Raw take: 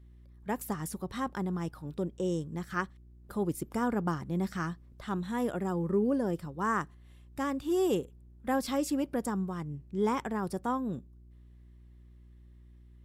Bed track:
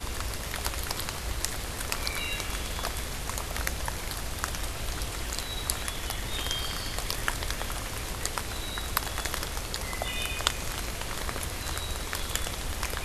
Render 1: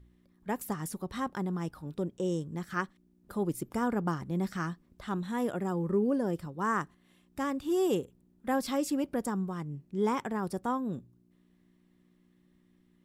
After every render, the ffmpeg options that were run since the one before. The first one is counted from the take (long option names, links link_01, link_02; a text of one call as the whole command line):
ffmpeg -i in.wav -af "bandreject=frequency=60:width_type=h:width=4,bandreject=frequency=120:width_type=h:width=4" out.wav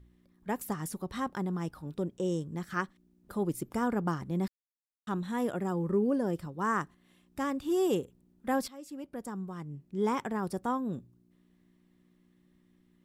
ffmpeg -i in.wav -filter_complex "[0:a]asplit=4[link_01][link_02][link_03][link_04];[link_01]atrim=end=4.48,asetpts=PTS-STARTPTS,afade=type=out:start_time=4.476:duration=0.004:curve=hsin[link_05];[link_02]atrim=start=4.48:end=5.07,asetpts=PTS-STARTPTS,volume=0[link_06];[link_03]atrim=start=5.07:end=8.68,asetpts=PTS-STARTPTS,afade=type=in:duration=0.004:curve=hsin,afade=type=out:start_time=3.606:duration=0.004:curve=hsin:silence=0.0841395[link_07];[link_04]atrim=start=8.68,asetpts=PTS-STARTPTS,afade=type=in:duration=1.49:silence=0.0841395[link_08];[link_05][link_06][link_07][link_08]concat=n=4:v=0:a=1" out.wav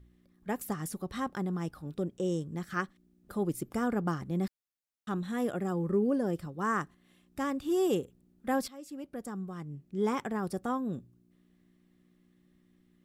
ffmpeg -i in.wav -af "bandreject=frequency=950:width=8.5" out.wav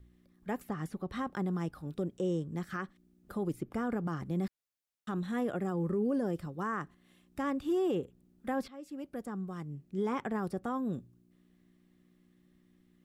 ffmpeg -i in.wav -filter_complex "[0:a]acrossover=split=500|3400[link_01][link_02][link_03];[link_03]acompressor=threshold=-59dB:ratio=6[link_04];[link_01][link_02][link_04]amix=inputs=3:normalize=0,alimiter=level_in=0.5dB:limit=-24dB:level=0:latency=1:release=52,volume=-0.5dB" out.wav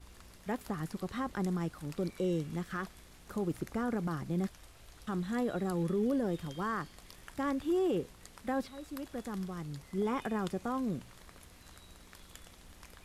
ffmpeg -i in.wav -i bed.wav -filter_complex "[1:a]volume=-22dB[link_01];[0:a][link_01]amix=inputs=2:normalize=0" out.wav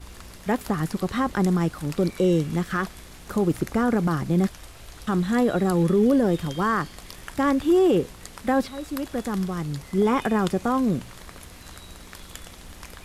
ffmpeg -i in.wav -af "volume=12dB" out.wav